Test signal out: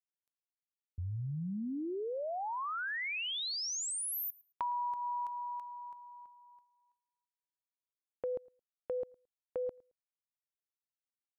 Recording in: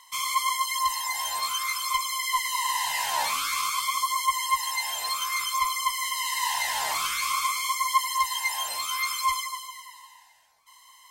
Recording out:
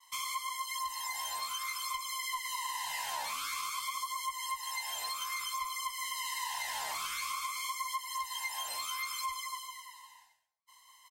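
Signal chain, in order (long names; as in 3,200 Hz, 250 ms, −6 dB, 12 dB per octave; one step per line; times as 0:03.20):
downward expander −51 dBFS
downward compressor, threshold −29 dBFS
repeating echo 110 ms, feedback 17%, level −23.5 dB
level −5 dB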